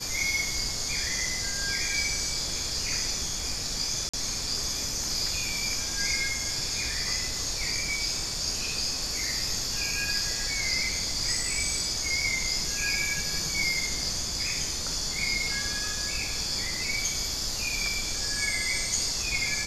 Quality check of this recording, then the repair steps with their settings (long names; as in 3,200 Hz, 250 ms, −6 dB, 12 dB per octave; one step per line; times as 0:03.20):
0:04.09–0:04.13: drop-out 45 ms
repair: repair the gap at 0:04.09, 45 ms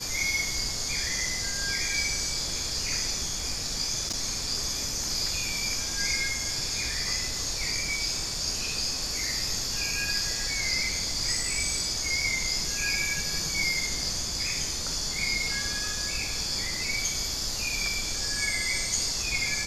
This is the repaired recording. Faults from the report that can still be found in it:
none of them is left